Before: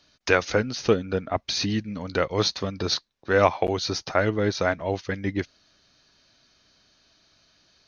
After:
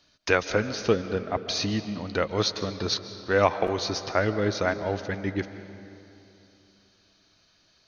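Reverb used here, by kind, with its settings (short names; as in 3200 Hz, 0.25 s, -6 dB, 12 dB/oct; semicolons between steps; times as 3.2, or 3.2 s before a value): digital reverb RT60 2.9 s, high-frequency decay 0.6×, pre-delay 0.1 s, DRR 11 dB; gain -2 dB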